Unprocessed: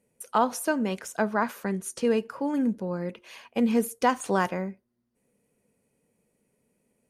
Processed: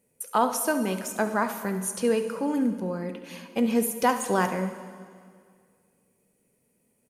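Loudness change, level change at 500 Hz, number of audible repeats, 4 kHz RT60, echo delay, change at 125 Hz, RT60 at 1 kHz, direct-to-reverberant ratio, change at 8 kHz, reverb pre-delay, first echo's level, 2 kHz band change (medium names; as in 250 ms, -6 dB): +1.0 dB, +1.0 dB, 1, 1.9 s, 70 ms, +1.0 dB, 2.0 s, 7.5 dB, +5.5 dB, 4 ms, -14.0 dB, +0.5 dB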